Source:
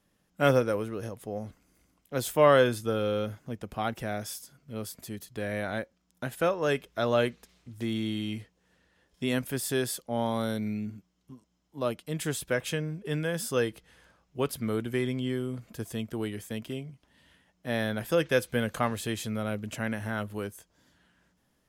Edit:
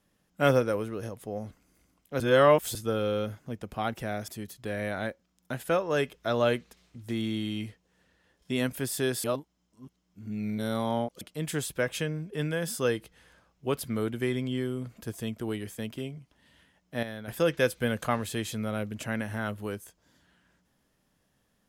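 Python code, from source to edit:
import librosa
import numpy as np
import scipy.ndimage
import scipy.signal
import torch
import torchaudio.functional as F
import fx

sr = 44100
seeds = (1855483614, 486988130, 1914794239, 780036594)

y = fx.edit(x, sr, fx.reverse_span(start_s=2.2, length_s=0.55),
    fx.cut(start_s=4.28, length_s=0.72),
    fx.reverse_span(start_s=9.96, length_s=1.97),
    fx.clip_gain(start_s=17.75, length_s=0.25, db=-9.5), tone=tone)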